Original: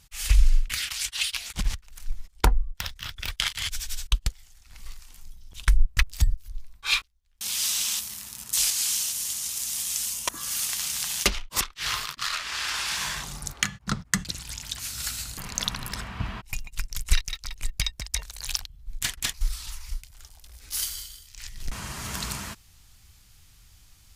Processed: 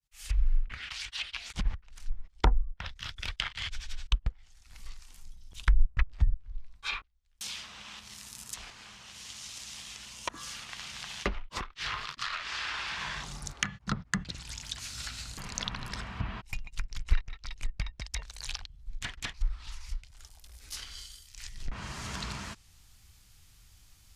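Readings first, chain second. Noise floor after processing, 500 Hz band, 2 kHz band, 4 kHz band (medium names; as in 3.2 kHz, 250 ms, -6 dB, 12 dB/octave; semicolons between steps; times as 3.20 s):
-60 dBFS, -3.5 dB, -5.5 dB, -9.0 dB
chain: fade-in on the opening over 0.74 s; low-pass that closes with the level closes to 1.5 kHz, closed at -22.5 dBFS; trim -3.5 dB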